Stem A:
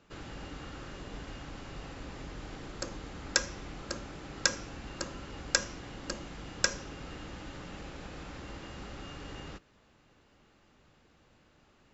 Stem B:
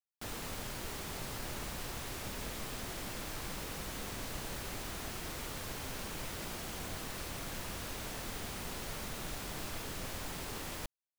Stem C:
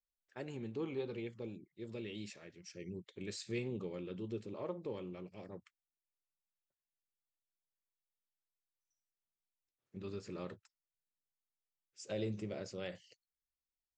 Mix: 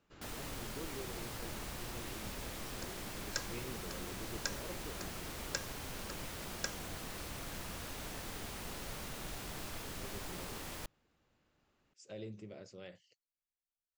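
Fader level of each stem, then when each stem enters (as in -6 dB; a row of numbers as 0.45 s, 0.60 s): -12.0 dB, -3.0 dB, -7.5 dB; 0.00 s, 0.00 s, 0.00 s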